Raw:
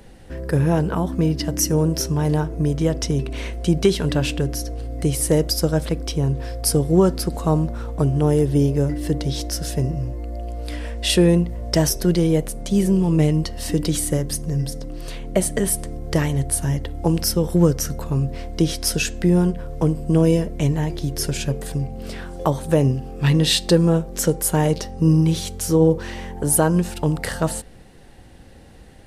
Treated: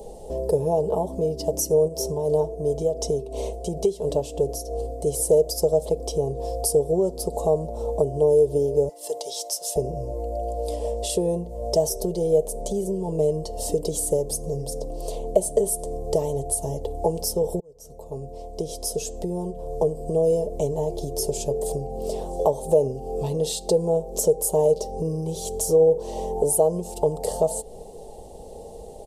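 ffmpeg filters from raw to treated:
-filter_complex "[0:a]asplit=3[s0][s1][s2];[s0]afade=t=out:st=1.87:d=0.02[s3];[s1]tremolo=f=2.9:d=0.61,afade=t=in:st=1.87:d=0.02,afade=t=out:st=5.06:d=0.02[s4];[s2]afade=t=in:st=5.06:d=0.02[s5];[s3][s4][s5]amix=inputs=3:normalize=0,asettb=1/sr,asplit=3[s6][s7][s8];[s6]atrim=end=8.894[s9];[s7]atrim=start=8.89:end=9.76,asetpts=PTS-STARTPTS,afade=t=in:d=0.004:c=qsin,afade=t=out:st=0.866:d=0.004:c=qsin,highpass=1100[s10];[s8]atrim=start=9.756[s11];[s9][s10]acrossfade=d=0.004:c1=hsin:c2=qsin[s12];[s12][s11]acrossfade=d=0.004:c1=qsin:c2=hsin,asplit=2[s13][s14];[s13]atrim=end=17.6,asetpts=PTS-STARTPTS,afade=t=out:st=17.596:d=0.004:c=hsin[s15];[s14]atrim=start=17.6,asetpts=PTS-STARTPTS,afade=t=in:d=3.12[s16];[s15][s16]concat=n=2:v=0:a=1,aecho=1:1:4.7:0.49,acompressor=threshold=0.0316:ratio=3,firequalizer=gain_entry='entry(130,0);entry(230,-5);entry(460,15);entry(810,10);entry(1500,-25);entry(3100,-6);entry(7300,7);entry(13000,4)':delay=0.05:min_phase=1"

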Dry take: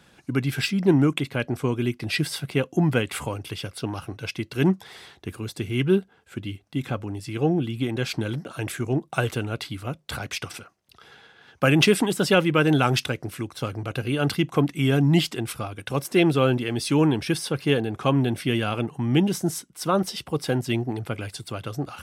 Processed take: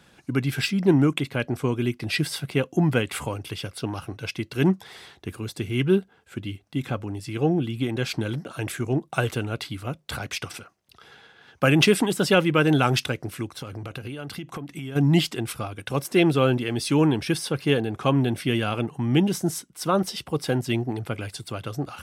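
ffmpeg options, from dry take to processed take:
-filter_complex "[0:a]asplit=3[s0][s1][s2];[s0]afade=t=out:st=13.55:d=0.02[s3];[s1]acompressor=threshold=0.0316:ratio=12:attack=3.2:release=140:knee=1:detection=peak,afade=t=in:st=13.55:d=0.02,afade=t=out:st=14.95:d=0.02[s4];[s2]afade=t=in:st=14.95:d=0.02[s5];[s3][s4][s5]amix=inputs=3:normalize=0"

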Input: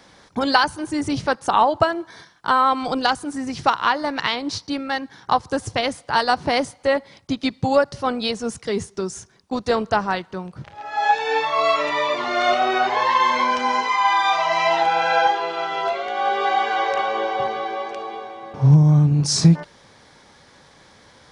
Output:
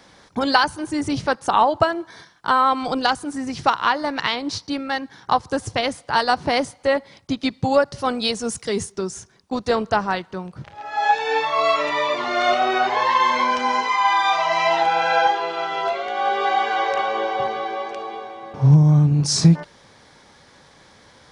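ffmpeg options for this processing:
-filter_complex "[0:a]asettb=1/sr,asplit=3[s0][s1][s2];[s0]atrim=end=7.984[s3];[s1]atrim=start=7.98:end=8.92,asetpts=PTS-STARTPTS,afade=t=in:d=0.004:c=qsin,afade=t=out:st=0.936:d=0.004:c=qsin,highshelf=f=6000:g=10[s4];[s2]atrim=start=8.916[s5];[s3][s4]acrossfade=d=0.004:c1=hsin:c2=qsin[s6];[s6][s5]acrossfade=d=0.004:c1=qsin:c2=hsin"

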